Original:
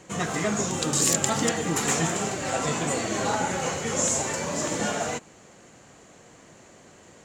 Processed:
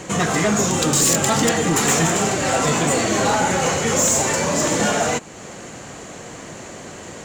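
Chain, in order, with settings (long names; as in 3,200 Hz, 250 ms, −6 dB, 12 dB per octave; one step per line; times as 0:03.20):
in parallel at +2 dB: downward compressor, threshold −43 dBFS, peak gain reduction 23 dB
on the sum: soft clipping −19.5 dBFS, distortion −14 dB
level +8.5 dB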